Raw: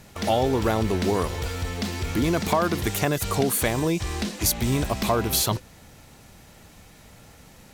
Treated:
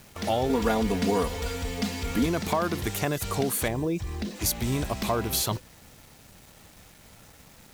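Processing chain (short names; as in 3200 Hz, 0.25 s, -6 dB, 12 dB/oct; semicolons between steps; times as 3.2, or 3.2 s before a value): 3.68–4.36 formant sharpening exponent 1.5; requantised 8-bit, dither none; 0.49–2.26 comb 4.2 ms, depth 95%; gain -4 dB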